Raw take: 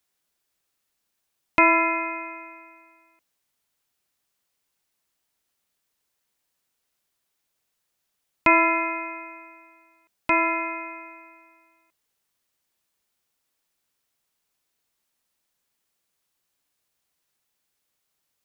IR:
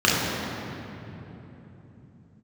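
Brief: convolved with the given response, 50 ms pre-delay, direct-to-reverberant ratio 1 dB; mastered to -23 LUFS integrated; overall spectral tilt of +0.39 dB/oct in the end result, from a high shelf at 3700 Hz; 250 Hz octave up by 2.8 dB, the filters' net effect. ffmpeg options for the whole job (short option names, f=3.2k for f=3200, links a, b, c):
-filter_complex "[0:a]equalizer=f=250:t=o:g=4.5,highshelf=f=3.7k:g=-6.5,asplit=2[a][b];[1:a]atrim=start_sample=2205,adelay=50[c];[b][c]afir=irnorm=-1:irlink=0,volume=-22.5dB[d];[a][d]amix=inputs=2:normalize=0,volume=-0.5dB"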